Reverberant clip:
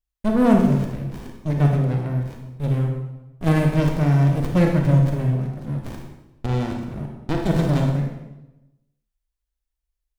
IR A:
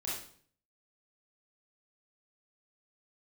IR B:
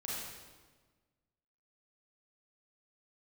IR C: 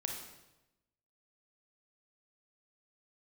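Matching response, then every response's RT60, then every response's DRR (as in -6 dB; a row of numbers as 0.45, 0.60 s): C; 0.55, 1.4, 0.95 s; -7.5, -7.0, 1.5 dB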